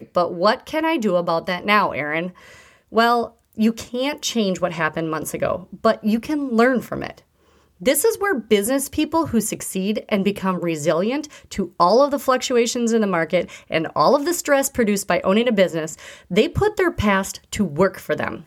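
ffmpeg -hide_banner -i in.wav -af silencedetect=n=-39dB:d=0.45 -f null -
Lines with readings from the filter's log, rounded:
silence_start: 7.19
silence_end: 7.81 | silence_duration: 0.62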